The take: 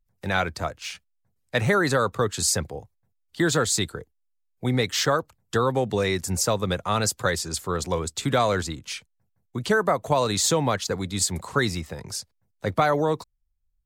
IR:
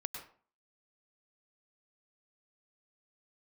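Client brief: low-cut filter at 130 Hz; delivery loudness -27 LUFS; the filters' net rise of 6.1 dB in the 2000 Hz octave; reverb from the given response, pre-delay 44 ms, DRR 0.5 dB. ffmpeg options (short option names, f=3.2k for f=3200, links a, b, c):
-filter_complex "[0:a]highpass=130,equalizer=f=2k:t=o:g=8,asplit=2[a][b];[1:a]atrim=start_sample=2205,adelay=44[c];[b][c]afir=irnorm=-1:irlink=0,volume=0dB[d];[a][d]amix=inputs=2:normalize=0,volume=-6.5dB"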